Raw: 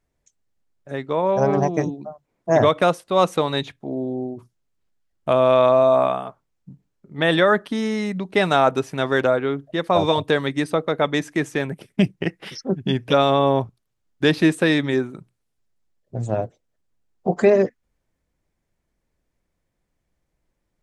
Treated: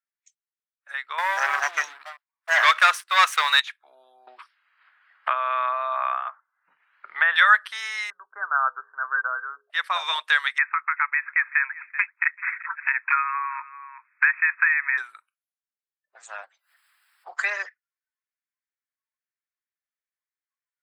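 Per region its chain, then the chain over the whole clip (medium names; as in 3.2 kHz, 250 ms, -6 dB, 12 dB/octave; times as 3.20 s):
1.18–3.60 s: hum notches 50/100/150/200/250/300/350 Hz + waveshaping leveller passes 2
4.27–7.36 s: low-pass 1.8 kHz + peaking EQ 160 Hz +9.5 dB 0.49 oct + three bands compressed up and down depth 100%
8.10–9.70 s: rippled Chebyshev low-pass 1.6 kHz, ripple 6 dB + de-hum 83.1 Hz, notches 6
10.58–14.98 s: brick-wall FIR band-pass 850–2600 Hz + delay 383 ms -24 dB + three bands compressed up and down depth 100%
16.43–17.28 s: high-pass 110 Hz + upward compressor, threshold -45 dBFS + frequency shift +61 Hz
whole clip: spectral noise reduction 19 dB; high-pass 1.2 kHz 24 dB/octave; peaking EQ 1.6 kHz +8 dB 1.3 oct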